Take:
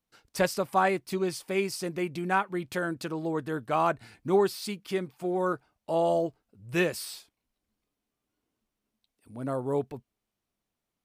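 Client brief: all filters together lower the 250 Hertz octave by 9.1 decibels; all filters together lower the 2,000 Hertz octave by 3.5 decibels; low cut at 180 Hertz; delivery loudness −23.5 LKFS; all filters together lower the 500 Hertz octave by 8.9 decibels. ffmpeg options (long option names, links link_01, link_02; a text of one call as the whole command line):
ffmpeg -i in.wav -af "highpass=180,equalizer=frequency=250:width_type=o:gain=-8.5,equalizer=frequency=500:width_type=o:gain=-9,equalizer=frequency=2000:width_type=o:gain=-4,volume=12dB" out.wav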